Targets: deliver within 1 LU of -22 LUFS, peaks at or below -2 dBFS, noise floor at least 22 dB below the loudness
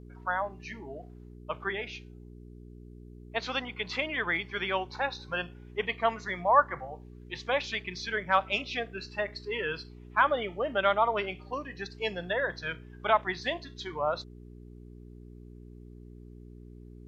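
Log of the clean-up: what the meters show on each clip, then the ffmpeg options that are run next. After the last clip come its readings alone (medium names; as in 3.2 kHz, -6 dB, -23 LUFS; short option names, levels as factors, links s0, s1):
hum 60 Hz; highest harmonic 420 Hz; hum level -45 dBFS; loudness -31.0 LUFS; peak level -9.5 dBFS; loudness target -22.0 LUFS
-> -af "bandreject=f=60:t=h:w=4,bandreject=f=120:t=h:w=4,bandreject=f=180:t=h:w=4,bandreject=f=240:t=h:w=4,bandreject=f=300:t=h:w=4,bandreject=f=360:t=h:w=4,bandreject=f=420:t=h:w=4"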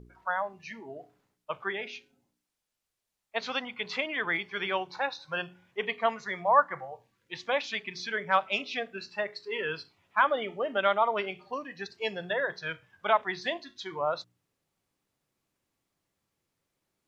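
hum not found; loudness -31.0 LUFS; peak level -9.5 dBFS; loudness target -22.0 LUFS
-> -af "volume=2.82,alimiter=limit=0.794:level=0:latency=1"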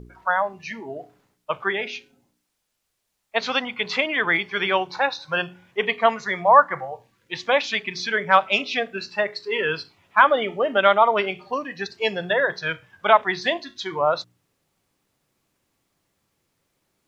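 loudness -22.0 LUFS; peak level -2.0 dBFS; noise floor -76 dBFS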